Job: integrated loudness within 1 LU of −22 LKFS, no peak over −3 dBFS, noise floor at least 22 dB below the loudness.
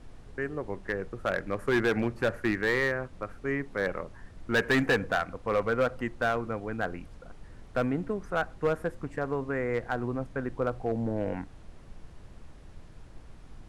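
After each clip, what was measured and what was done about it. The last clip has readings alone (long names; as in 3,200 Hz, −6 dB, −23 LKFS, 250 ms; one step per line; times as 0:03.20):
share of clipped samples 1.1%; peaks flattened at −19.5 dBFS; background noise floor −50 dBFS; target noise floor −53 dBFS; integrated loudness −30.5 LKFS; sample peak −19.5 dBFS; target loudness −22.0 LKFS
→ clipped peaks rebuilt −19.5 dBFS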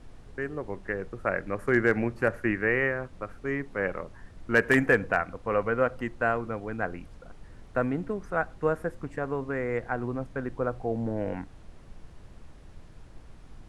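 share of clipped samples 0.0%; background noise floor −50 dBFS; target noise floor −51 dBFS
→ noise reduction from a noise print 6 dB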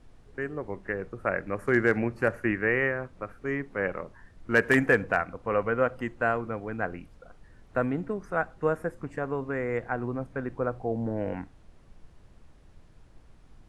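background noise floor −56 dBFS; integrated loudness −29.0 LKFS; sample peak −10.5 dBFS; target loudness −22.0 LKFS
→ level +7 dB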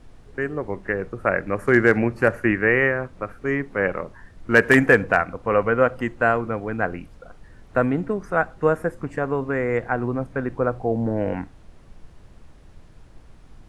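integrated loudness −22.0 LKFS; sample peak −3.5 dBFS; background noise floor −49 dBFS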